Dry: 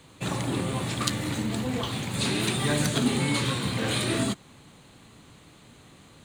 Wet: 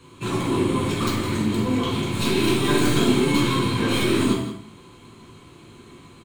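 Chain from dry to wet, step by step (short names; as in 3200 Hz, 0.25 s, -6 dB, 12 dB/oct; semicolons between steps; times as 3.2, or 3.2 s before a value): tracing distortion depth 0.17 ms; wavefolder -16 dBFS; small resonant body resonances 360/1000/2200/3200 Hz, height 11 dB, ringing for 40 ms; 2.59–3.11 doubler 43 ms -4 dB; echo 0.164 s -12 dB; reverb, pre-delay 9 ms, DRR -2 dB; gain -4 dB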